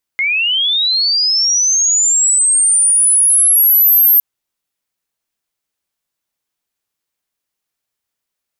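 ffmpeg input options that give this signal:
-f lavfi -i "aevalsrc='pow(10,(-12.5+6.5*t/4.01)/20)*sin(2*PI*(2100*t+10900*t*t/(2*4.01)))':d=4.01:s=44100"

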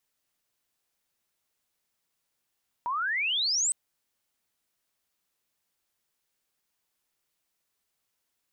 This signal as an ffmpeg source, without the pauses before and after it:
-f lavfi -i "aevalsrc='pow(10,(-27+4*t/0.86)/20)*sin(2*PI*930*0.86/log(8400/930)*(exp(log(8400/930)*t/0.86)-1))':d=0.86:s=44100"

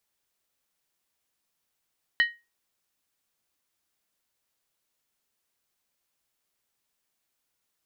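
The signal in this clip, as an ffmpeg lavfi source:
-f lavfi -i "aevalsrc='0.178*pow(10,-3*t/0.25)*sin(2*PI*1880*t)+0.0631*pow(10,-3*t/0.198)*sin(2*PI*2996.7*t)+0.0224*pow(10,-3*t/0.171)*sin(2*PI*4015.7*t)+0.00794*pow(10,-3*t/0.165)*sin(2*PI*4316.5*t)+0.00282*pow(10,-3*t/0.153)*sin(2*PI*4987.6*t)':d=0.63:s=44100"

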